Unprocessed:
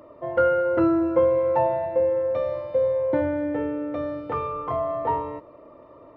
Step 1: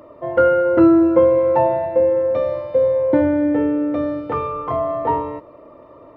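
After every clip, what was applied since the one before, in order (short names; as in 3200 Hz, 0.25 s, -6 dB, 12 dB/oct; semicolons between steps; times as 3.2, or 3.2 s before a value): dynamic EQ 270 Hz, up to +6 dB, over -36 dBFS, Q 1.3; gain +4.5 dB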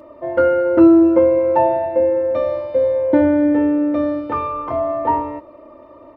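comb 3.3 ms, depth 55%; gain -1 dB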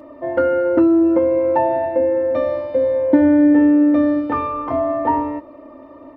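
compressor 5:1, threshold -13 dBFS, peak gain reduction 7 dB; small resonant body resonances 270/770/1800 Hz, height 10 dB, ringing for 75 ms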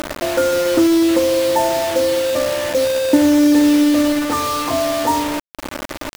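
upward compressor, threshold -16 dBFS; bit-crush 4-bit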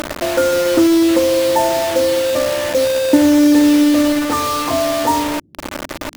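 band noise 71–310 Hz -54 dBFS; gain +1.5 dB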